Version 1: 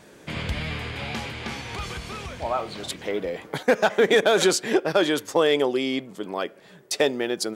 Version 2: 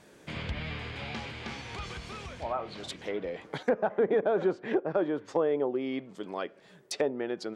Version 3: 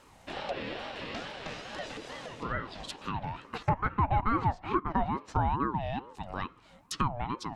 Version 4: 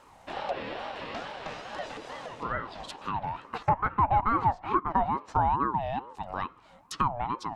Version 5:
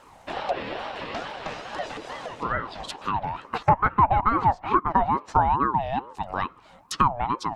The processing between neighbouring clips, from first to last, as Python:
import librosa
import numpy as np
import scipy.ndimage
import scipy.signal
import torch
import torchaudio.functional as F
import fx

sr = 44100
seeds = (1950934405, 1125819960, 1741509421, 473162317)

y1 = fx.env_lowpass_down(x, sr, base_hz=1000.0, full_db=-18.5)
y1 = y1 * 10.0 ** (-6.5 / 20.0)
y2 = fx.notch(y1, sr, hz=1600.0, q=17.0)
y2 = fx.ring_lfo(y2, sr, carrier_hz=540.0, swing_pct=35, hz=2.3)
y2 = y2 * 10.0 ** (2.0 / 20.0)
y3 = fx.peak_eq(y2, sr, hz=890.0, db=8.0, octaves=1.6)
y3 = y3 * 10.0 ** (-2.5 / 20.0)
y4 = fx.hpss(y3, sr, part='percussive', gain_db=7)